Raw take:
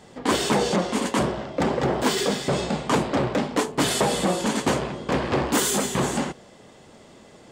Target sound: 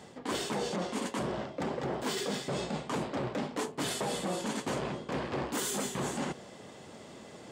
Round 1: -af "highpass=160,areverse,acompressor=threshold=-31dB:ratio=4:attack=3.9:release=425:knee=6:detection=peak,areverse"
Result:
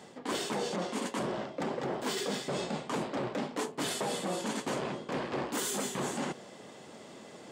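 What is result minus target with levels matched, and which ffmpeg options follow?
125 Hz band −3.0 dB
-af "highpass=77,areverse,acompressor=threshold=-31dB:ratio=4:attack=3.9:release=425:knee=6:detection=peak,areverse"

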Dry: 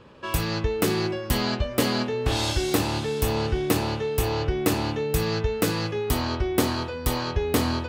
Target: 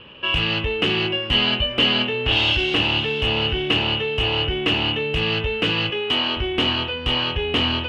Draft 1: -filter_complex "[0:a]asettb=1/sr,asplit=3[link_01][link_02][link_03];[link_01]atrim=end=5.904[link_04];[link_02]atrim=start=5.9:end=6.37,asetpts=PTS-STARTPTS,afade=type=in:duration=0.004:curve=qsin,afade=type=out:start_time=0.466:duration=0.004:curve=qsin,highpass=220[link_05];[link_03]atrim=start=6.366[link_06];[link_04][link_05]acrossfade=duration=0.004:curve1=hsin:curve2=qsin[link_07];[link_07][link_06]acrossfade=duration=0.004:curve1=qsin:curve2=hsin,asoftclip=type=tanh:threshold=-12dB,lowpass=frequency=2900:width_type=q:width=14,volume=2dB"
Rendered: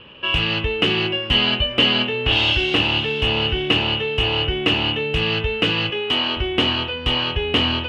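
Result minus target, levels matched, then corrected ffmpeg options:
soft clipping: distortion −8 dB
-filter_complex "[0:a]asettb=1/sr,asplit=3[link_01][link_02][link_03];[link_01]atrim=end=5.904[link_04];[link_02]atrim=start=5.9:end=6.37,asetpts=PTS-STARTPTS,afade=type=in:duration=0.004:curve=qsin,afade=type=out:start_time=0.466:duration=0.004:curve=qsin,highpass=220[link_05];[link_03]atrim=start=6.366[link_06];[link_04][link_05]acrossfade=duration=0.004:curve1=hsin:curve2=qsin[link_07];[link_07][link_06]acrossfade=duration=0.004:curve1=qsin:curve2=hsin,asoftclip=type=tanh:threshold=-18.5dB,lowpass=frequency=2900:width_type=q:width=14,volume=2dB"

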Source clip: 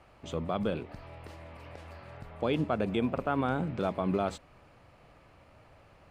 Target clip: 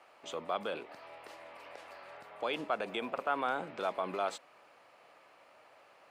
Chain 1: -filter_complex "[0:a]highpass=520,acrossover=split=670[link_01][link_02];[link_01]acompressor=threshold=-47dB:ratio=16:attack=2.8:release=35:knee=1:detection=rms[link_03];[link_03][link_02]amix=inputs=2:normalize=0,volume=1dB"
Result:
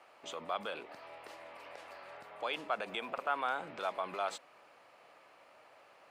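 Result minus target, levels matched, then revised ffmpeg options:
downward compressor: peak gain reduction +9.5 dB
-filter_complex "[0:a]highpass=520,acrossover=split=670[link_01][link_02];[link_01]acompressor=threshold=-37dB:ratio=16:attack=2.8:release=35:knee=1:detection=rms[link_03];[link_03][link_02]amix=inputs=2:normalize=0,volume=1dB"

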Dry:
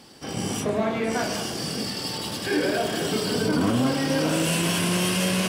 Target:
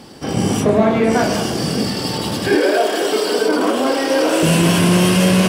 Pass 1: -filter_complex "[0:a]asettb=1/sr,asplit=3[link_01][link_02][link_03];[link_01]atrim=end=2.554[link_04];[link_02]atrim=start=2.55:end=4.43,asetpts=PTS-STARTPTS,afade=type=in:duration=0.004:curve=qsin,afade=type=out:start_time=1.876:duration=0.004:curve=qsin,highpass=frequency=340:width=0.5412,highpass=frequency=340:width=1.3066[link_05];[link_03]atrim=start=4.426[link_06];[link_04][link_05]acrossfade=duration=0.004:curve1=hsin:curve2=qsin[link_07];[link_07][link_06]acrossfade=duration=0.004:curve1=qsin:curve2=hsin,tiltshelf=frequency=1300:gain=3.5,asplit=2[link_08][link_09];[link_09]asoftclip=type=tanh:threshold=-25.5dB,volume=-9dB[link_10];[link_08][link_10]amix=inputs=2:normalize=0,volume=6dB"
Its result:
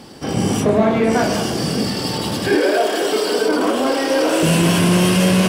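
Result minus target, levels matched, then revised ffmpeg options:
soft clipping: distortion +14 dB
-filter_complex "[0:a]asettb=1/sr,asplit=3[link_01][link_02][link_03];[link_01]atrim=end=2.554[link_04];[link_02]atrim=start=2.55:end=4.43,asetpts=PTS-STARTPTS,afade=type=in:duration=0.004:curve=qsin,afade=type=out:start_time=1.876:duration=0.004:curve=qsin,highpass=frequency=340:width=0.5412,highpass=frequency=340:width=1.3066[link_05];[link_03]atrim=start=4.426[link_06];[link_04][link_05]acrossfade=duration=0.004:curve1=hsin:curve2=qsin[link_07];[link_07][link_06]acrossfade=duration=0.004:curve1=qsin:curve2=hsin,tiltshelf=frequency=1300:gain=3.5,asplit=2[link_08][link_09];[link_09]asoftclip=type=tanh:threshold=-13.5dB,volume=-9dB[link_10];[link_08][link_10]amix=inputs=2:normalize=0,volume=6dB"

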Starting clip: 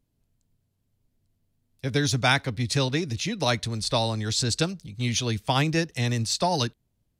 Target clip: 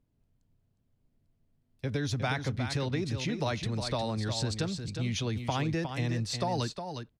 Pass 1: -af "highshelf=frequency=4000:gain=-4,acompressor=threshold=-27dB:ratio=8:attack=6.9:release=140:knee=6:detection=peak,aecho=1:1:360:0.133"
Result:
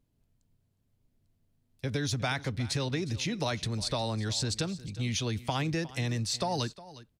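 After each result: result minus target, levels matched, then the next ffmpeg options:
echo-to-direct −10 dB; 8,000 Hz band +4.5 dB
-af "highshelf=frequency=4000:gain=-4,acompressor=threshold=-27dB:ratio=8:attack=6.9:release=140:knee=6:detection=peak,aecho=1:1:360:0.422"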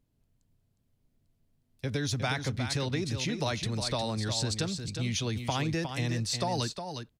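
8,000 Hz band +4.5 dB
-af "highshelf=frequency=4000:gain=-13.5,acompressor=threshold=-27dB:ratio=8:attack=6.9:release=140:knee=6:detection=peak,aecho=1:1:360:0.422"

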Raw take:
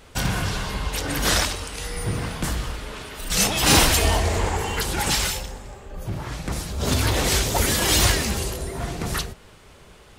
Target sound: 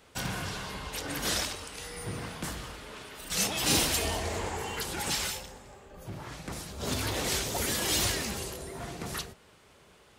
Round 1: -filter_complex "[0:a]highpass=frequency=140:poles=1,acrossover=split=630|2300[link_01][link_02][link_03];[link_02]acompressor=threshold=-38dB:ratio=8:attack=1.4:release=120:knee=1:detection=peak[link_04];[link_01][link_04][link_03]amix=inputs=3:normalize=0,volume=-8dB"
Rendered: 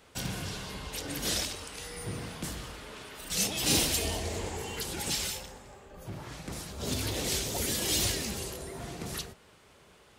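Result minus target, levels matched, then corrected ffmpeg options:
downward compressor: peak gain reduction +9.5 dB
-filter_complex "[0:a]highpass=frequency=140:poles=1,acrossover=split=630|2300[link_01][link_02][link_03];[link_02]acompressor=threshold=-27dB:ratio=8:attack=1.4:release=120:knee=1:detection=peak[link_04];[link_01][link_04][link_03]amix=inputs=3:normalize=0,volume=-8dB"

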